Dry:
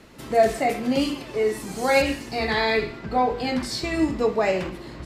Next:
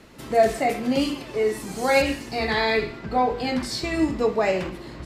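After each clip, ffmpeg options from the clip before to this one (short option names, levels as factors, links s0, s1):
-af anull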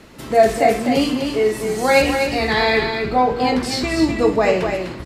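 -af "aecho=1:1:250:0.501,volume=1.78"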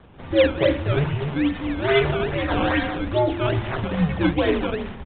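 -af "afreqshift=-140,acrusher=samples=16:mix=1:aa=0.000001:lfo=1:lforange=16:lforate=2.4,aresample=8000,aresample=44100,volume=0.631"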